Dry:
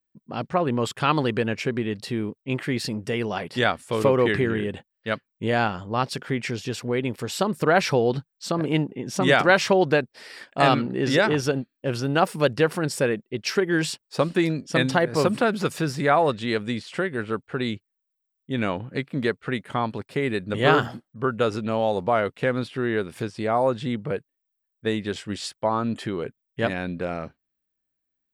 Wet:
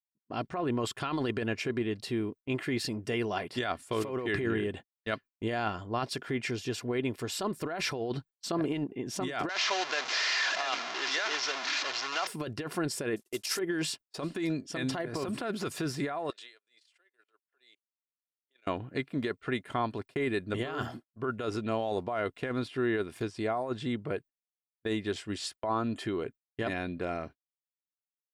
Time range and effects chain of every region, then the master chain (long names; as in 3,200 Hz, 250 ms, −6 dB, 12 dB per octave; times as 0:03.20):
0:09.49–0:12.27: linear delta modulator 32 kbit/s, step −17.5 dBFS + high-pass filter 940 Hz
0:13.16–0:13.59: variable-slope delta modulation 64 kbit/s + bass and treble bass −11 dB, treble +15 dB
0:16.30–0:18.67: high-pass filter 460 Hz 24 dB per octave + tilt shelving filter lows −5 dB, about 1,500 Hz + output level in coarse steps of 22 dB
whole clip: noise gate −40 dBFS, range −28 dB; compressor whose output falls as the input rises −24 dBFS, ratio −1; comb filter 2.9 ms, depth 39%; level −7 dB